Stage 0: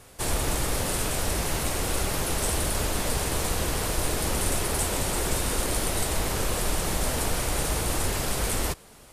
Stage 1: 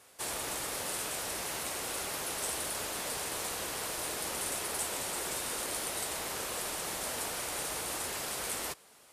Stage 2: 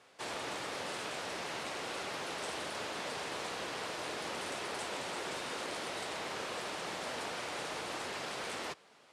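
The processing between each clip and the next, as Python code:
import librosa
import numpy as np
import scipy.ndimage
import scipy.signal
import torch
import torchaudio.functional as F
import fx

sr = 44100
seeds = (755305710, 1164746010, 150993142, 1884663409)

y1 = fx.highpass(x, sr, hz=600.0, slope=6)
y1 = y1 * 10.0 ** (-6.0 / 20.0)
y2 = fx.bandpass_edges(y1, sr, low_hz=120.0, high_hz=4300.0)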